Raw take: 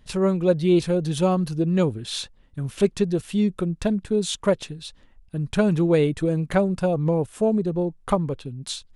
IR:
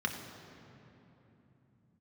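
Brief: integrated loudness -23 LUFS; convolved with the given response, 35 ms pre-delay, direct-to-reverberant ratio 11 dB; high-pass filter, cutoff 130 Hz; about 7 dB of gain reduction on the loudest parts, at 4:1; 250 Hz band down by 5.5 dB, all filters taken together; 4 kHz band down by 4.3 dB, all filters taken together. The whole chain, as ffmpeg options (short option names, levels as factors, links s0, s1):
-filter_complex "[0:a]highpass=130,equalizer=f=250:t=o:g=-8,equalizer=f=4000:t=o:g=-5,acompressor=threshold=0.0562:ratio=4,asplit=2[s0][s1];[1:a]atrim=start_sample=2205,adelay=35[s2];[s1][s2]afir=irnorm=-1:irlink=0,volume=0.141[s3];[s0][s3]amix=inputs=2:normalize=0,volume=2.37"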